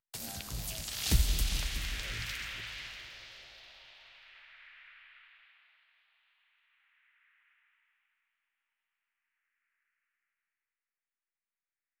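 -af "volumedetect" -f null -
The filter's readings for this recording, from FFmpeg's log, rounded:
mean_volume: -39.7 dB
max_volume: -13.1 dB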